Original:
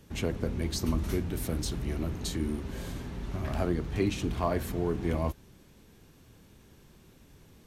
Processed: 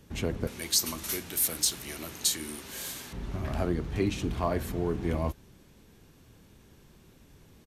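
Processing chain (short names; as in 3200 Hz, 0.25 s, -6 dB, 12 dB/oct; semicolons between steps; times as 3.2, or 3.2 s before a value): downsampling 32000 Hz; 0.47–3.13 tilt +4.5 dB/oct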